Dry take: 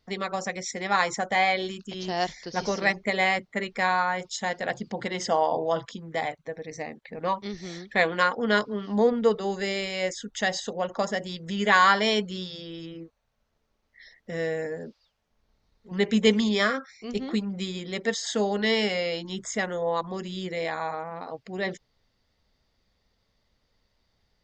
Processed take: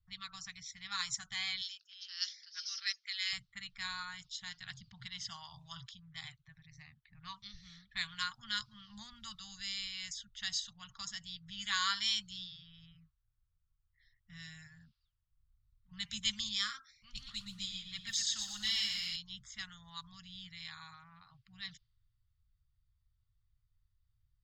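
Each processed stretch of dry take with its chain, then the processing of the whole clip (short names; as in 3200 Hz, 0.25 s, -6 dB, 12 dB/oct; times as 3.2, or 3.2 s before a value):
1.61–3.33 elliptic band-pass 1400–6600 Hz, stop band 50 dB + bell 5200 Hz +11 dB 0.42 oct
16.95–19.16 phaser 1.8 Hz, delay 3.6 ms, feedback 43% + lo-fi delay 0.119 s, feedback 55%, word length 9-bit, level -7 dB
whole clip: low-pass opened by the level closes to 1300 Hz, open at -21 dBFS; Chebyshev band-stop 120–1200 Hz, order 3; band shelf 1100 Hz -14 dB 2.6 oct; gain -1.5 dB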